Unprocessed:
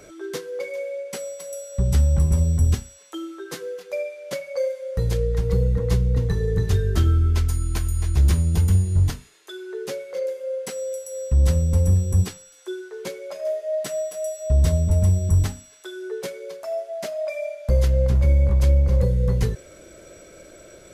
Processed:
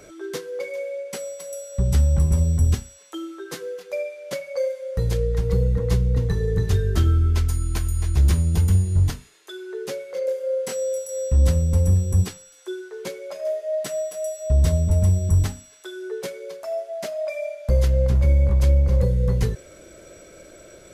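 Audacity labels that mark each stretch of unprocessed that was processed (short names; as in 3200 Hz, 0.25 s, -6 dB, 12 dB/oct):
10.250000	11.490000	doubler 25 ms -3 dB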